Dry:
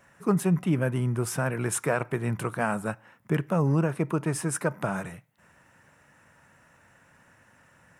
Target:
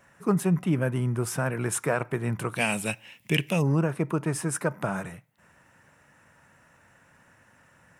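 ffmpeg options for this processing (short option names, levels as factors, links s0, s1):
-filter_complex "[0:a]asplit=3[s0][s1][s2];[s0]afade=t=out:st=2.55:d=0.02[s3];[s1]highshelf=f=1900:t=q:w=3:g=11.5,afade=t=in:st=2.55:d=0.02,afade=t=out:st=3.61:d=0.02[s4];[s2]afade=t=in:st=3.61:d=0.02[s5];[s3][s4][s5]amix=inputs=3:normalize=0"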